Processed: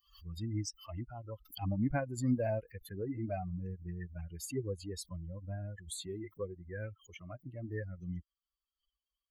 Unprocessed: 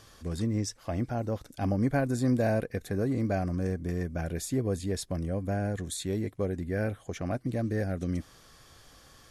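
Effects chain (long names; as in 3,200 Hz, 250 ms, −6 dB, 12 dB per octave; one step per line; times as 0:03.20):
spectral dynamics exaggerated over time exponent 3
background raised ahead of every attack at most 140 dB per second
level −1.5 dB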